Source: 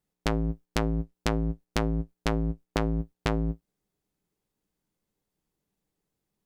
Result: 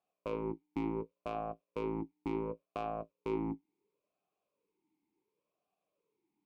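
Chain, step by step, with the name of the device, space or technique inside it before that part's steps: talk box (valve stage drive 32 dB, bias 0.8; talking filter a-u 0.7 Hz); trim +17 dB

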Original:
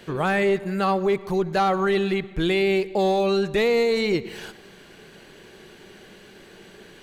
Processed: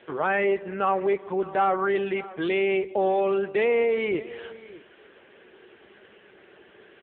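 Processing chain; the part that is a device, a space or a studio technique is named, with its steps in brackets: satellite phone (band-pass 340–3200 Hz; delay 606 ms -18.5 dB; AMR-NB 6.7 kbps 8 kHz)

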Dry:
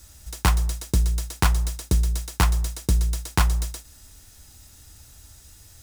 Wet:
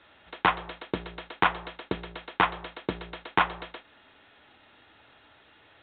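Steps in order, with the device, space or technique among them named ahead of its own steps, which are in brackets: telephone (band-pass 380–3200 Hz; saturation -13.5 dBFS, distortion -16 dB; trim +5.5 dB; µ-law 64 kbps 8 kHz)

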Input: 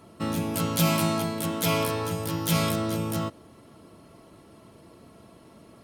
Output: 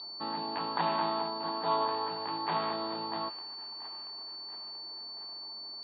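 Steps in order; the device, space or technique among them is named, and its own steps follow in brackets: 1.27–1.88 s: resonant high shelf 1.9 kHz -8.5 dB, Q 1.5; feedback echo behind a high-pass 683 ms, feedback 61%, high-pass 2.2 kHz, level -13 dB; toy sound module (decimation joined by straight lines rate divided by 8×; class-D stage that switches slowly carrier 4.5 kHz; cabinet simulation 540–3700 Hz, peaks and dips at 550 Hz -10 dB, 900 Hz +8 dB, 1.4 kHz -7 dB, 2.2 kHz -9 dB, 3.7 kHz +9 dB)

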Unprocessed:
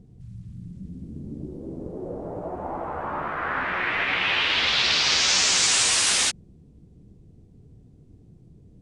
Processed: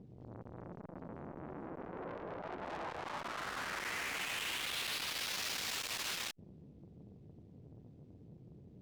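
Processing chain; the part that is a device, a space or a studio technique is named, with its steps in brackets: valve radio (band-pass 97–4400 Hz; valve stage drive 39 dB, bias 0.7; transformer saturation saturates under 760 Hz); trim +2.5 dB

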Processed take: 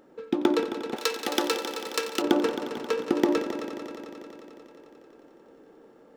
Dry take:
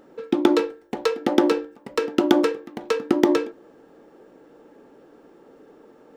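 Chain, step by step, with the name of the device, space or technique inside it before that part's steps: multi-head tape echo (multi-head delay 89 ms, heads all three, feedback 71%, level -13.5 dB; wow and flutter 12 cents); 0.96–2.22 s: tilt EQ +4 dB/octave; trim -5 dB

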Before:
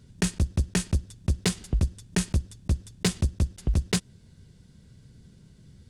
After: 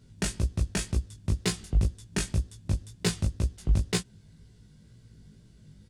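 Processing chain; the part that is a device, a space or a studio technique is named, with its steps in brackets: double-tracked vocal (doubling 19 ms -5 dB; chorus 2 Hz, delay 16 ms, depth 4.4 ms)

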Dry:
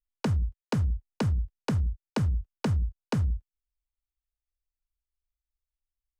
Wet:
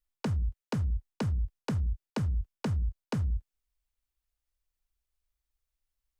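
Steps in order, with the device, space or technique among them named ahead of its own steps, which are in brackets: compression on the reversed sound (reverse; compression, threshold -32 dBFS, peak gain reduction 9 dB; reverse); trim +4.5 dB

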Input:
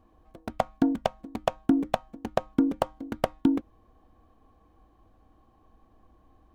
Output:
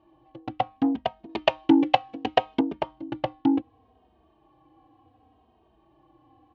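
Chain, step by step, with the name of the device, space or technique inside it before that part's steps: barber-pole flanger into a guitar amplifier (endless flanger 2.9 ms -0.68 Hz; saturation -20.5 dBFS, distortion -12 dB; cabinet simulation 90–4400 Hz, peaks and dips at 130 Hz +7 dB, 200 Hz -8 dB, 320 Hz +7 dB, 810 Hz +7 dB, 1.4 kHz -5 dB, 2.9 kHz +8 dB); 1.29–2.61 s: FFT filter 200 Hz 0 dB, 400 Hz +7 dB, 1.2 kHz +6 dB, 2.4 kHz +12 dB; trim +3 dB

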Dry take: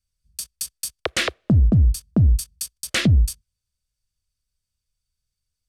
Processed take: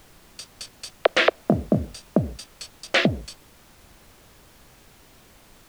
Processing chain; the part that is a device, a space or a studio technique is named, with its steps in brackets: horn gramophone (band-pass 280–3400 Hz; peaking EQ 630 Hz +9 dB; wow and flutter; pink noise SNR 24 dB); 1.37–2.10 s: doubling 25 ms -7 dB; trim +3.5 dB

